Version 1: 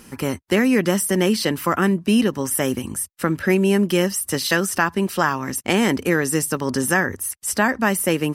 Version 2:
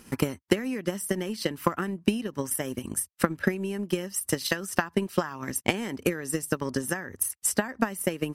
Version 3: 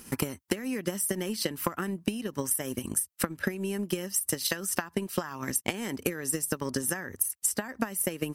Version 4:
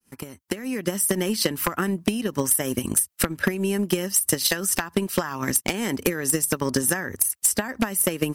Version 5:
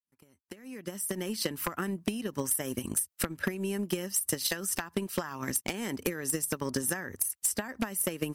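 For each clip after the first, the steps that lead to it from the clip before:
compression 12:1, threshold -21 dBFS, peak gain reduction 10 dB; transient shaper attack +12 dB, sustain -4 dB; trim -7.5 dB
treble shelf 6.4 kHz +9.5 dB; compression 5:1, threshold -25 dBFS, peak gain reduction 10.5 dB
fade-in on the opening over 1.15 s; wavefolder -18 dBFS; trim +8 dB
fade-in on the opening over 1.50 s; trim -8.5 dB

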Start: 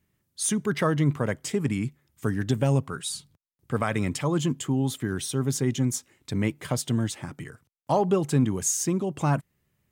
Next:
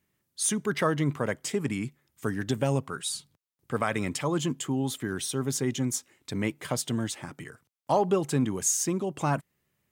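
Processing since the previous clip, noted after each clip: bass shelf 160 Hz -10 dB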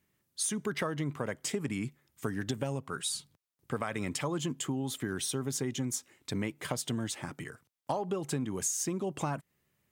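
compression 10:1, threshold -29 dBFS, peak gain reduction 11 dB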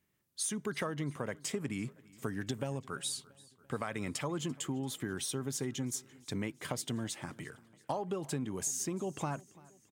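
feedback delay 340 ms, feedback 58%, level -23 dB; trim -3 dB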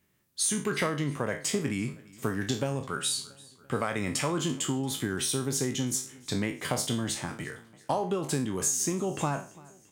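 spectral sustain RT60 0.36 s; trim +6 dB

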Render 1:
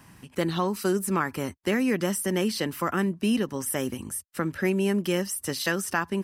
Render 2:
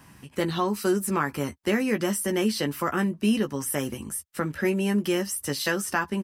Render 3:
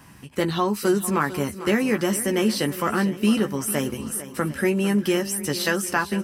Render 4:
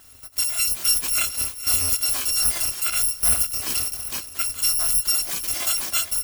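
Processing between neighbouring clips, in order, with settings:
doubling 14 ms -7 dB
shuffle delay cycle 750 ms, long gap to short 1.5:1, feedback 31%, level -14 dB; trim +3 dB
bit-reversed sample order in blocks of 256 samples

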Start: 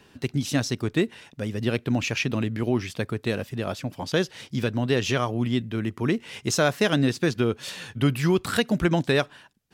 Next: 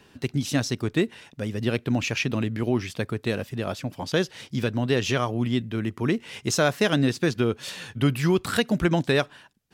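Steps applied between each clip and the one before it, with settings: no audible change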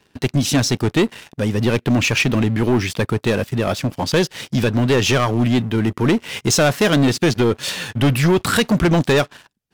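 waveshaping leveller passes 3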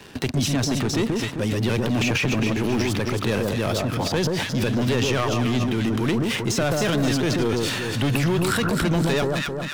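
echo whose repeats swap between lows and highs 131 ms, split 1.3 kHz, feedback 60%, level -4 dB; transient shaper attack -4 dB, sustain +8 dB; three bands compressed up and down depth 70%; trim -7 dB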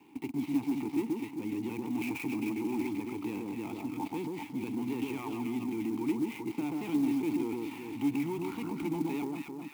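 dead-time distortion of 0.081 ms; vowel filter u; sampling jitter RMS 0.025 ms

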